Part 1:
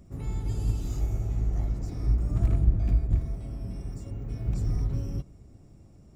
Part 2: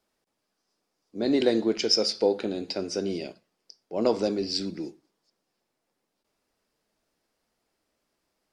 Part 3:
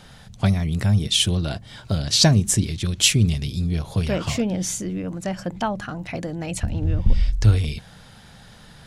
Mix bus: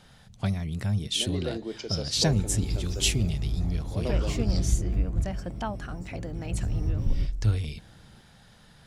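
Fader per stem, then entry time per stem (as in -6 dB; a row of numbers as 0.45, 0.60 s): -2.5, -10.5, -8.5 dB; 2.05, 0.00, 0.00 s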